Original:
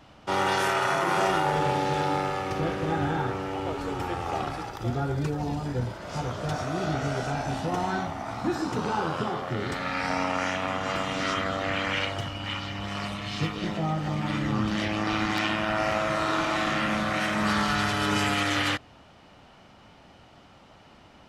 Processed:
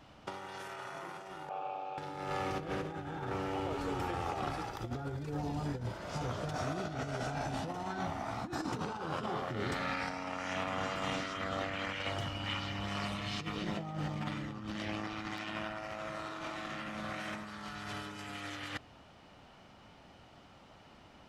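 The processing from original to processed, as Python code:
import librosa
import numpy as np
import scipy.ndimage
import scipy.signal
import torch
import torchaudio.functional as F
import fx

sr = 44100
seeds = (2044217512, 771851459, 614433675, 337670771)

y = fx.vowel_filter(x, sr, vowel='a', at=(1.49, 1.98))
y = fx.over_compress(y, sr, threshold_db=-30.0, ratio=-0.5)
y = F.gain(torch.from_numpy(y), -7.5).numpy()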